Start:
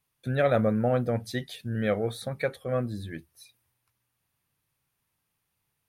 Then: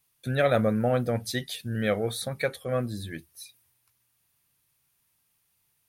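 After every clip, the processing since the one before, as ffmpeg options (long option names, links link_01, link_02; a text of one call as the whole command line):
ffmpeg -i in.wav -af "highshelf=frequency=3000:gain=9.5" out.wav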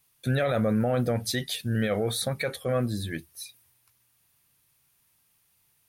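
ffmpeg -i in.wav -af "alimiter=limit=-21.5dB:level=0:latency=1:release=34,volume=4dB" out.wav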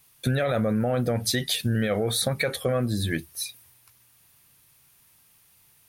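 ffmpeg -i in.wav -af "acompressor=threshold=-30dB:ratio=6,volume=8.5dB" out.wav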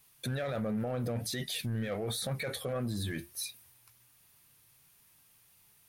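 ffmpeg -i in.wav -af "flanger=delay=4.7:depth=4.2:regen=76:speed=1.4:shape=sinusoidal,alimiter=level_in=3dB:limit=-24dB:level=0:latency=1:release=15,volume=-3dB,asoftclip=type=hard:threshold=-28.5dB" out.wav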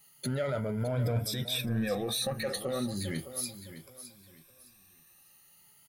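ffmpeg -i in.wav -af "afftfilt=real='re*pow(10,15/40*sin(2*PI*(1.7*log(max(b,1)*sr/1024/100)/log(2)-(0.36)*(pts-256)/sr)))':imag='im*pow(10,15/40*sin(2*PI*(1.7*log(max(b,1)*sr/1024/100)/log(2)-(0.36)*(pts-256)/sr)))':win_size=1024:overlap=0.75,aecho=1:1:612|1224|1836:0.237|0.0664|0.0186" out.wav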